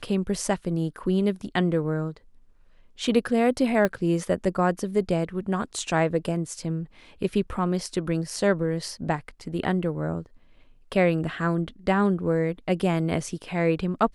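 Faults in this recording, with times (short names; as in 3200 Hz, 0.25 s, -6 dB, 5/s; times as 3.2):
3.85 pop -11 dBFS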